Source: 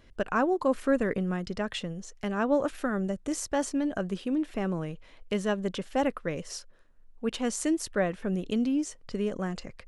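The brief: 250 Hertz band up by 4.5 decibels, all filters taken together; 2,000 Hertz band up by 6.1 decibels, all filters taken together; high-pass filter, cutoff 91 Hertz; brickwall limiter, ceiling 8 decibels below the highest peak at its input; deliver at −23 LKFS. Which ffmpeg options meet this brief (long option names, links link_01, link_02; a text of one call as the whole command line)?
ffmpeg -i in.wav -af "highpass=91,equalizer=frequency=250:width_type=o:gain=5.5,equalizer=frequency=2000:width_type=o:gain=8,volume=6dB,alimiter=limit=-12.5dB:level=0:latency=1" out.wav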